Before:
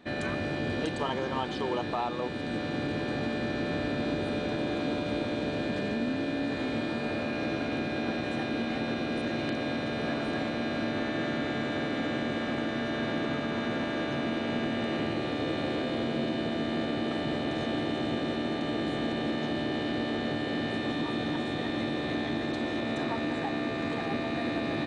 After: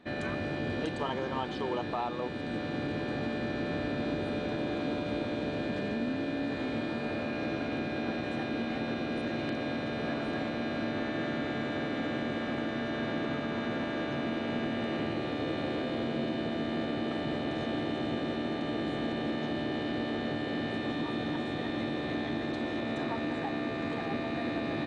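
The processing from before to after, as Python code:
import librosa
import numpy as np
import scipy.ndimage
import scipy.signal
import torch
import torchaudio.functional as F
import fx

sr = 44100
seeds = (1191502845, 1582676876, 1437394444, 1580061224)

y = fx.high_shelf(x, sr, hz=5300.0, db=-6.5)
y = y * 10.0 ** (-2.0 / 20.0)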